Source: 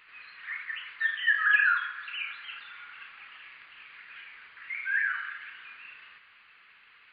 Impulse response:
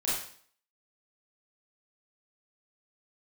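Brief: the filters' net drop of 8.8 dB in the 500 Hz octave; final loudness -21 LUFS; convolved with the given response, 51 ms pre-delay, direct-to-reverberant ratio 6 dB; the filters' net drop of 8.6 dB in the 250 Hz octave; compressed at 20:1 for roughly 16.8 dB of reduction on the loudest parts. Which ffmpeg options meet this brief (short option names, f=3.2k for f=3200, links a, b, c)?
-filter_complex "[0:a]equalizer=f=250:t=o:g=-9,equalizer=f=500:t=o:g=-9,acompressor=threshold=-36dB:ratio=20,asplit=2[a][b];[1:a]atrim=start_sample=2205,adelay=51[c];[b][c]afir=irnorm=-1:irlink=0,volume=-13.5dB[d];[a][d]amix=inputs=2:normalize=0,volume=19.5dB"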